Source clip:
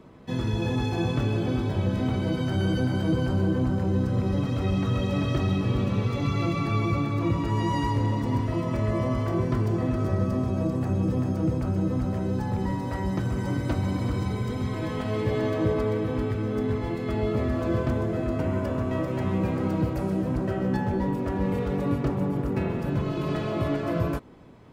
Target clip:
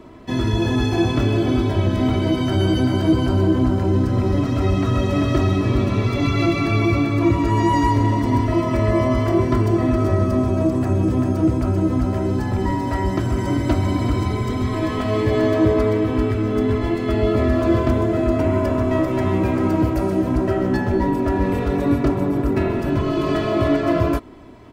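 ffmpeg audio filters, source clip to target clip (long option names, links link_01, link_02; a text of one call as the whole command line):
ffmpeg -i in.wav -af "aecho=1:1:3:0.57,volume=7dB" out.wav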